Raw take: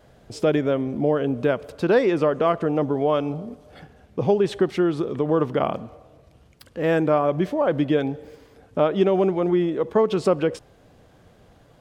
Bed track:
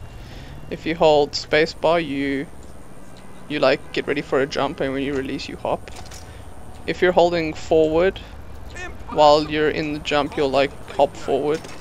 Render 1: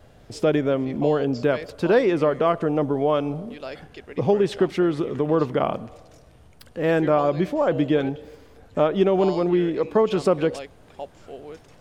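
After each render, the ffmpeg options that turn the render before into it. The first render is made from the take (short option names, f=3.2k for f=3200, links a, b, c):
-filter_complex "[1:a]volume=-18.5dB[a];[0:a][a]amix=inputs=2:normalize=0"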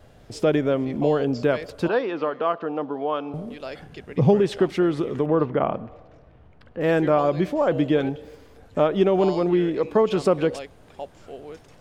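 -filter_complex "[0:a]asettb=1/sr,asplit=3[a][b][c];[a]atrim=end=1.884[d];[b]atrim=start=1.88:end=3.34,asetpts=PTS-STARTPTS,afade=t=in:d=0.004:c=qsin,afade=t=out:st=1.456:d=0.004:c=qsin,highpass=340,equalizer=f=380:t=q:w=4:g=-7,equalizer=f=590:t=q:w=4:g=-6,equalizer=f=2.1k:t=q:w=4:g=-9,equalizer=f=3.4k:t=q:w=4:g=-3,lowpass=f=4.2k:w=0.5412,lowpass=f=4.2k:w=1.3066[e];[c]atrim=start=3.336[f];[d][e]acrossfade=d=0.004:c1=hsin:c2=qsin[g];[g][f]acrossfade=d=0.004:c1=qsin:c2=hsin,asettb=1/sr,asplit=3[h][i][j];[h]atrim=end=3.864[k];[i]atrim=start=3.86:end=4.4,asetpts=PTS-STARTPTS,afade=t=in:d=0.004:c=qsin,afade=t=out:st=0.536:d=0.004:c=qsin,equalizer=f=150:w=1.5:g=10.5[l];[j]atrim=start=4.396[m];[k][l]acrossfade=d=0.004:c1=hsin:c2=qsin[n];[n][m]acrossfade=d=0.004:c1=qsin:c2=hsin,asettb=1/sr,asplit=3[o][p][q];[o]atrim=end=5.264[r];[p]atrim=start=5.26:end=6.81,asetpts=PTS-STARTPTS,afade=t=in:d=0.004:c=qsin,afade=t=out:st=1.546:d=0.004:c=qsin,lowpass=2.2k[s];[q]atrim=start=6.806[t];[r][s]acrossfade=d=0.004:c1=hsin:c2=qsin[u];[u][t]acrossfade=d=0.004:c1=qsin:c2=hsin"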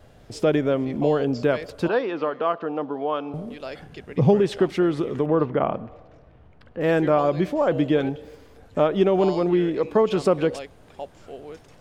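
-af anull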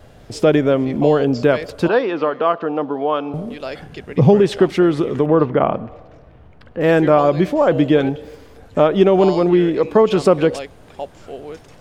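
-af "volume=6.5dB,alimiter=limit=-1dB:level=0:latency=1"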